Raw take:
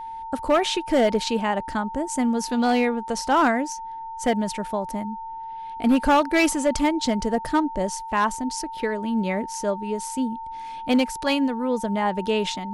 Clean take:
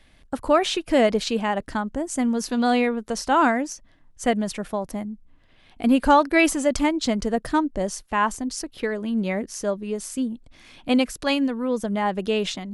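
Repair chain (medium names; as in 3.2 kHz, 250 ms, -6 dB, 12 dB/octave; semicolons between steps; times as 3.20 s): clip repair -13 dBFS; band-stop 900 Hz, Q 30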